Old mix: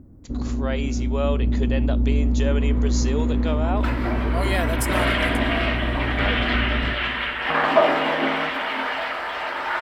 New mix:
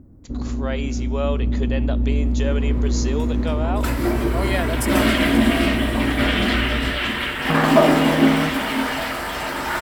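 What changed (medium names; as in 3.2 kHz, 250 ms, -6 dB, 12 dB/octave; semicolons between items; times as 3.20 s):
speech: send on; second sound: remove three-band isolator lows -17 dB, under 440 Hz, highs -22 dB, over 3.9 kHz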